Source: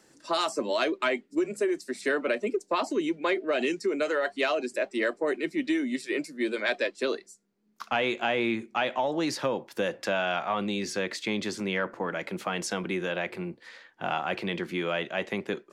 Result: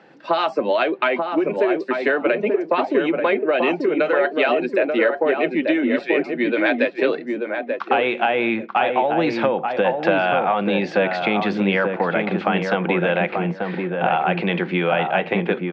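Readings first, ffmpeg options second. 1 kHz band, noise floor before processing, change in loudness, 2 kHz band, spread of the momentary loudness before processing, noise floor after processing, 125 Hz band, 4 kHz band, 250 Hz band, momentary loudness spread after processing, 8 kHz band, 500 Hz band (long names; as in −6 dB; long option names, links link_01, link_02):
+11.0 dB, −62 dBFS, +9.0 dB, +8.5 dB, 5 LU, −37 dBFS, +12.0 dB, +3.5 dB, +9.0 dB, 3 LU, below −10 dB, +10.0 dB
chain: -filter_complex "[0:a]highpass=140,equalizer=frequency=170:width_type=q:width=4:gain=7,equalizer=frequency=520:width_type=q:width=4:gain=5,equalizer=frequency=780:width_type=q:width=4:gain=9,equalizer=frequency=1500:width_type=q:width=4:gain=4,equalizer=frequency=2500:width_type=q:width=4:gain=4,lowpass=frequency=3500:width=0.5412,lowpass=frequency=3500:width=1.3066,acompressor=threshold=-24dB:ratio=6,asplit=2[link_01][link_02];[link_02]adelay=886,lowpass=frequency=1100:poles=1,volume=-3dB,asplit=2[link_03][link_04];[link_04]adelay=886,lowpass=frequency=1100:poles=1,volume=0.24,asplit=2[link_05][link_06];[link_06]adelay=886,lowpass=frequency=1100:poles=1,volume=0.24[link_07];[link_01][link_03][link_05][link_07]amix=inputs=4:normalize=0,volume=8.5dB"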